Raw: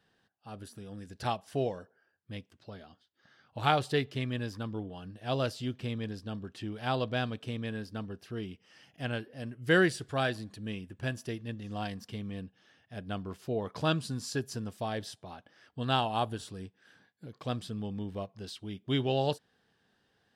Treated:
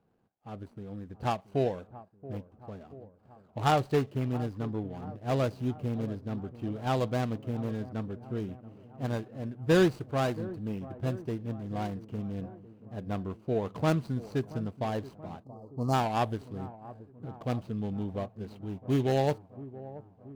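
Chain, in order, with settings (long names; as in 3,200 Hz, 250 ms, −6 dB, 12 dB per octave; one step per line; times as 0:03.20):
running median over 25 samples
on a send: delay with a low-pass on its return 679 ms, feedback 62%, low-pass 1,200 Hz, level −16.5 dB
on the sum: gain on a spectral selection 0:15.44–0:15.94, 1,300–4,100 Hz −21 dB
one half of a high-frequency compander decoder only
level +3.5 dB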